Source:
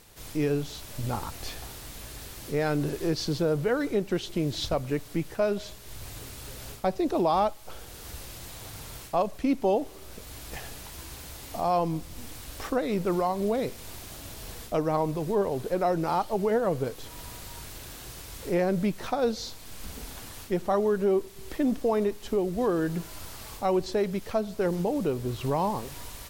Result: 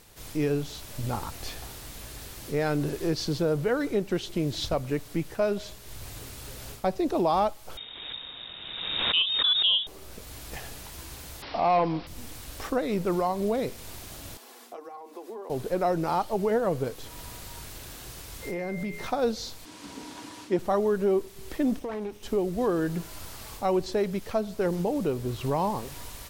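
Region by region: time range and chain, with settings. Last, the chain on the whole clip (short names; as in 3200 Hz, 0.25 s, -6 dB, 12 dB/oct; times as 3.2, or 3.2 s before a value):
7.77–9.87 inverted band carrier 3700 Hz + backwards sustainer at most 35 dB/s
11.42–12.07 overdrive pedal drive 15 dB, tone 2300 Hz, clips at -14 dBFS + careless resampling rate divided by 4×, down none, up filtered
14.37–15.5 rippled Chebyshev high-pass 230 Hz, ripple 6 dB + compressor 10:1, threshold -34 dBFS + notch comb 310 Hz
18.42–19.07 de-hum 82.99 Hz, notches 39 + compressor, threshold -29 dBFS + whine 2100 Hz -41 dBFS
19.65–20.59 BPF 170–7500 Hz + small resonant body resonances 300/960 Hz, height 15 dB, ringing for 0.1 s
21.79–22.23 minimum comb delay 0.33 ms + high shelf 10000 Hz -7.5 dB + compressor 4:1, threshold -31 dBFS
whole clip: dry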